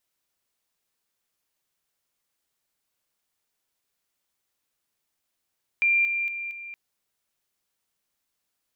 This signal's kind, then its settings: level ladder 2380 Hz -18 dBFS, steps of -6 dB, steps 4, 0.23 s 0.00 s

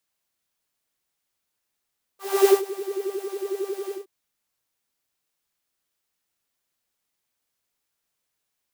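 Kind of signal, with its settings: synth patch with filter wobble G4, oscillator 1 triangle, interval 0 st, oscillator 2 level -11 dB, sub -29 dB, noise -10 dB, filter highpass, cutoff 380 Hz, Q 3.5, filter envelope 1 oct, filter decay 0.57 s, filter sustain 35%, attack 0.29 s, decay 0.14 s, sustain -18.5 dB, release 0.14 s, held 1.73 s, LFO 11 Hz, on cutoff 0.5 oct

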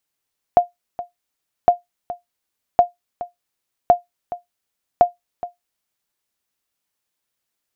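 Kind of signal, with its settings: sonar ping 705 Hz, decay 0.15 s, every 1.11 s, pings 5, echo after 0.42 s, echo -16 dB -2.5 dBFS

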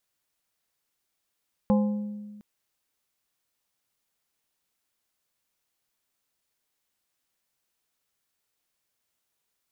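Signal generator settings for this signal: glass hit plate, length 0.71 s, lowest mode 208 Hz, modes 4, decay 1.59 s, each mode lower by 6 dB, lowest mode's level -17.5 dB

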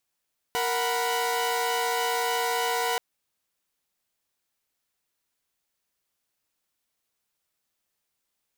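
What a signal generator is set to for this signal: chord A#4/F#5/B5 saw, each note -26.5 dBFS 2.43 s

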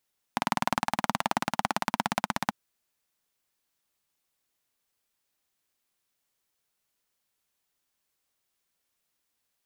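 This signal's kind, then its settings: single-cylinder engine model, changing speed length 2.14 s, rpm 2400, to 1900, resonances 220/820 Hz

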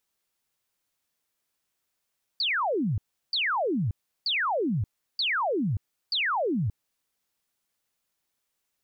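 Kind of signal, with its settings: burst of laser zaps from 4800 Hz, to 89 Hz, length 0.58 s sine, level -23.5 dB, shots 5, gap 0.35 s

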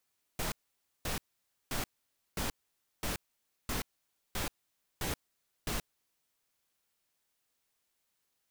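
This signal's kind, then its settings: noise bursts pink, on 0.13 s, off 0.53 s, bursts 9, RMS -34.5 dBFS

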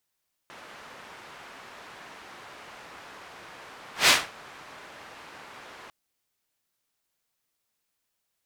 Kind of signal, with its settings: whoosh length 5.40 s, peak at 3.58, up 0.15 s, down 0.25 s, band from 1300 Hz, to 3100 Hz, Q 0.74, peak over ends 29.5 dB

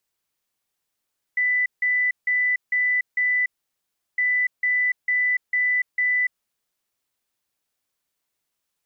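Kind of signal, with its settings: beep pattern sine 1990 Hz, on 0.29 s, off 0.16 s, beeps 5, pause 0.72 s, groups 2, -18 dBFS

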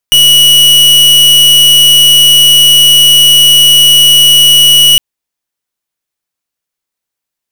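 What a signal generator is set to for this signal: pulse 2930 Hz, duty 44% -4 dBFS 4.86 s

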